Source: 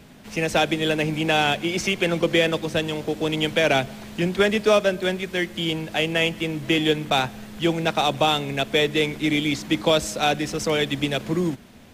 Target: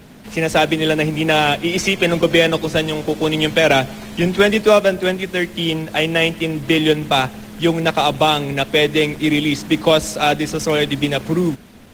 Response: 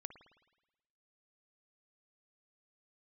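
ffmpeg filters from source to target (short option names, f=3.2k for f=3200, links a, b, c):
-filter_complex "[0:a]asplit=2[a][b];[b]acrusher=bits=5:mode=log:mix=0:aa=0.000001,volume=-6dB[c];[a][c]amix=inputs=2:normalize=0,volume=2.5dB" -ar 48000 -c:a libopus -b:a 20k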